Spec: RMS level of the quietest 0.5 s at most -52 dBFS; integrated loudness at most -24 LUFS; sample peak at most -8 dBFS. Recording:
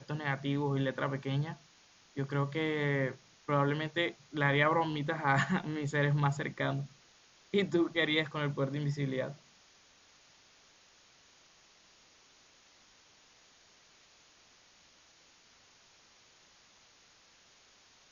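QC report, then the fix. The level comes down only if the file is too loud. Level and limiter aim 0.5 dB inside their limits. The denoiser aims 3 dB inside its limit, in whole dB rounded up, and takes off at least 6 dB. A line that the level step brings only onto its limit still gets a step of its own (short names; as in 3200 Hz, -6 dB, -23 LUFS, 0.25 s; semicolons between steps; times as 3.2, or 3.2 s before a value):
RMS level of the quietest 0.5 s -63 dBFS: OK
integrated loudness -32.5 LUFS: OK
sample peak -13.0 dBFS: OK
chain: none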